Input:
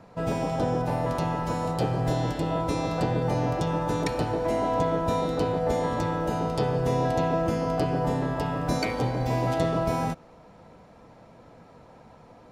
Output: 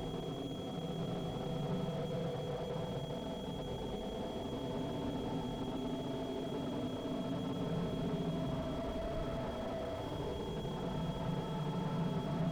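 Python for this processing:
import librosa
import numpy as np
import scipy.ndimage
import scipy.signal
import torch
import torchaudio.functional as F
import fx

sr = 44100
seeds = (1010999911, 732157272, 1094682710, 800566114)

p1 = scipy.signal.sosfilt(scipy.signal.butter(4, 51.0, 'highpass', fs=sr, output='sos'), x)
p2 = fx.peak_eq(p1, sr, hz=1900.0, db=-12.0, octaves=0.6)
p3 = p2 + 0.56 * np.pad(p2, (int(4.6 * sr / 1000.0), 0))[:len(p2)]
p4 = fx.over_compress(p3, sr, threshold_db=-32.0, ratio=-0.5)
p5 = fx.tube_stage(p4, sr, drive_db=34.0, bias=0.55)
p6 = p5 + 10.0 ** (-41.0 / 20.0) * np.sin(2.0 * np.pi * 3300.0 * np.arange(len(p5)) / sr)
p7 = p6 + fx.echo_split(p6, sr, split_hz=2300.0, low_ms=203, high_ms=335, feedback_pct=52, wet_db=-9, dry=0)
p8 = fx.paulstretch(p7, sr, seeds[0], factor=21.0, window_s=0.05, from_s=7.92)
p9 = fx.slew_limit(p8, sr, full_power_hz=5.1)
y = p9 * 10.0 ** (3.5 / 20.0)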